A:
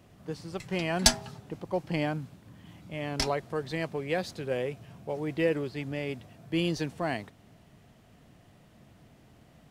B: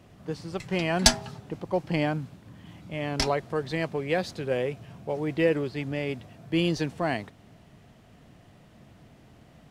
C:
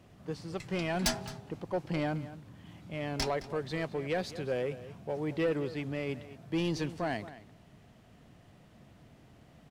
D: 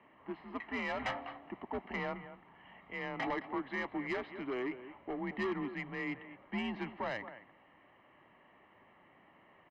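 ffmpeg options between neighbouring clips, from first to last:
-af "highshelf=f=9200:g=-6.5,volume=1.5"
-filter_complex "[0:a]asoftclip=type=tanh:threshold=0.112,asplit=2[s0][s1];[s1]adelay=215.7,volume=0.178,highshelf=f=4000:g=-4.85[s2];[s0][s2]amix=inputs=2:normalize=0,volume=0.631"
-af "highpass=f=430:t=q:w=0.5412,highpass=f=430:t=q:w=1.307,lowpass=f=2700:t=q:w=0.5176,lowpass=f=2700:t=q:w=0.7071,lowpass=f=2700:t=q:w=1.932,afreqshift=-120,asoftclip=type=tanh:threshold=0.0282,aecho=1:1:1:0.64,volume=1.33"

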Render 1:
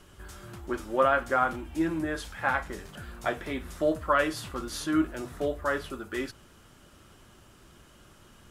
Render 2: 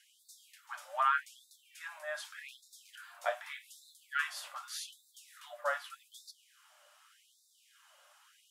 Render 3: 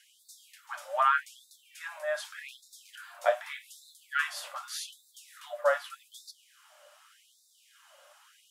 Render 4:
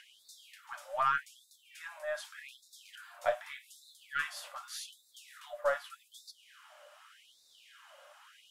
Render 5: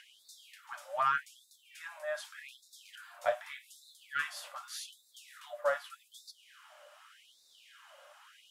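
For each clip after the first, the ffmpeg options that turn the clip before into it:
-af "flanger=delay=7.1:depth=1.4:regen=74:speed=0.79:shape=sinusoidal,afftfilt=real='re*gte(b*sr/1024,500*pow(3600/500,0.5+0.5*sin(2*PI*0.84*pts/sr)))':imag='im*gte(b*sr/1024,500*pow(3600/500,0.5+0.5*sin(2*PI*0.84*pts/sr)))':win_size=1024:overlap=0.75"
-af "equalizer=f=550:w=2.5:g=8,volume=1.58"
-filter_complex "[0:a]acrossover=split=3600[s0][s1];[s0]acompressor=mode=upward:threshold=0.00631:ratio=2.5[s2];[s2][s1]amix=inputs=2:normalize=0,aeval=exprs='0.266*(cos(1*acos(clip(val(0)/0.266,-1,1)))-cos(1*PI/2))+0.00596*(cos(6*acos(clip(val(0)/0.266,-1,1)))-cos(6*PI/2))':c=same,volume=0.562"
-af "highpass=f=91:p=1"

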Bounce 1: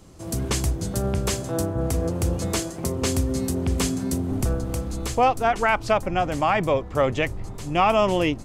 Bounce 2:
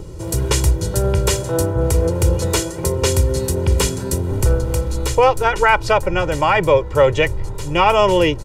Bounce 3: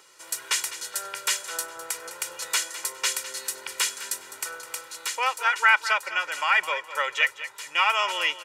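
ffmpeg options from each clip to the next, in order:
-filter_complex "[0:a]aecho=1:1:2.1:0.79,acrossover=split=510|1400[s0][s1][s2];[s0]acompressor=mode=upward:threshold=0.0398:ratio=2.5[s3];[s3][s1][s2]amix=inputs=3:normalize=0,volume=1.78"
-af "highpass=f=1600:t=q:w=1.5,aecho=1:1:206|412|618:0.211|0.0613|0.0178,volume=0.631"

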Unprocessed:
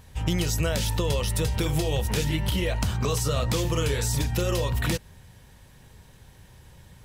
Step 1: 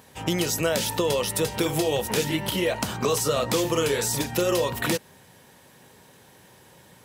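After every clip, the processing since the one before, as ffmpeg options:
-af "highpass=260,equalizer=f=3600:w=0.32:g=-4,volume=2.11"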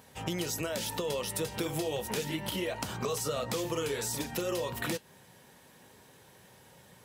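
-af "acompressor=threshold=0.0355:ratio=2,flanger=delay=1.4:depth=4.5:regen=-76:speed=0.3:shape=sinusoidal"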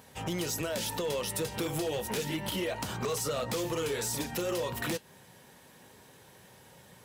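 -af "asoftclip=type=hard:threshold=0.0376,volume=1.19"

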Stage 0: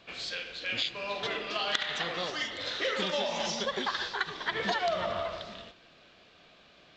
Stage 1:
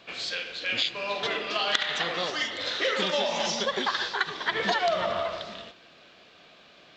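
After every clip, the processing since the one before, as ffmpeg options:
-af "lowshelf=f=92:g=-11.5,volume=1.68"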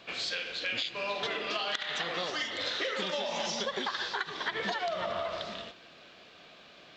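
-af "acompressor=threshold=0.0316:ratio=6"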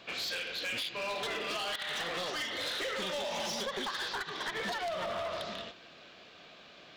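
-af "asoftclip=type=hard:threshold=0.0251"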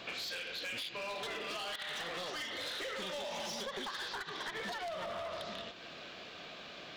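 -af "acompressor=threshold=0.00398:ratio=3,volume=1.88"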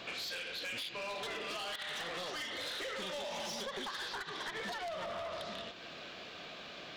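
-af "asoftclip=type=tanh:threshold=0.02,volume=1.12"

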